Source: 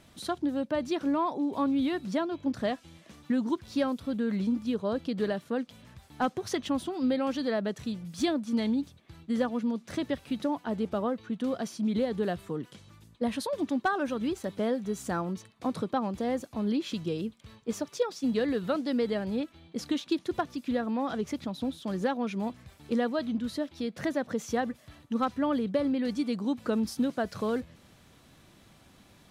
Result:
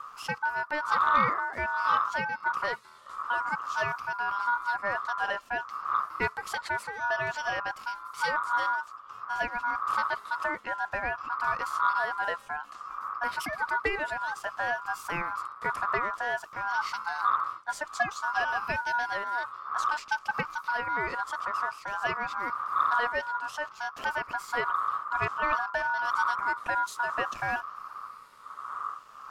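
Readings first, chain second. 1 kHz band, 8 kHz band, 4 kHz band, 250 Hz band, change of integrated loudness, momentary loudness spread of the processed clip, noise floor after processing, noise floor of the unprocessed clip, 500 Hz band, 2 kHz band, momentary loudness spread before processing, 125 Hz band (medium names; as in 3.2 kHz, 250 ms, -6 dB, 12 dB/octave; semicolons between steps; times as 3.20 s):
+9.5 dB, -1.5 dB, -1.0 dB, -20.0 dB, +1.0 dB, 9 LU, -50 dBFS, -59 dBFS, -6.5 dB, +13.0 dB, 7 LU, -7.0 dB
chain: drifting ripple filter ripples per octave 0.56, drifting -0.55 Hz, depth 6 dB; wind noise 100 Hz -33 dBFS; ring modulator 1.2 kHz; in parallel at -8 dB: sine folder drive 5 dB, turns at -10 dBFS; on the sum: trim -5.5 dB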